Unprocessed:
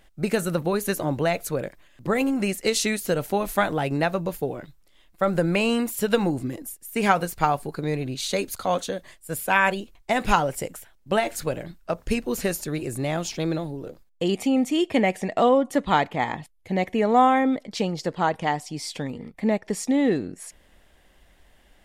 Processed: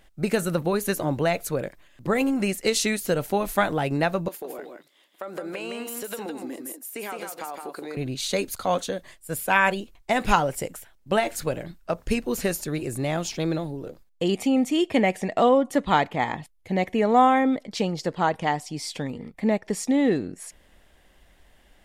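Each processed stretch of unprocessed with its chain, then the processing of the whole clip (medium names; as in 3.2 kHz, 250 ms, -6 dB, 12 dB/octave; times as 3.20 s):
4.28–7.97 s: high-pass 270 Hz 24 dB/octave + compression, threshold -31 dBFS + delay 163 ms -5 dB
whole clip: none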